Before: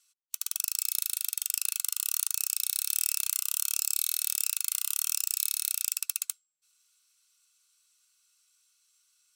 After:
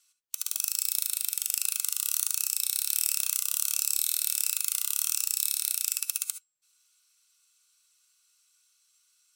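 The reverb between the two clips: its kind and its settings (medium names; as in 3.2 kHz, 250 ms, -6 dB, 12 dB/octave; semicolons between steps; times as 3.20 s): gated-style reverb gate 90 ms rising, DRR 9.5 dB; trim +1 dB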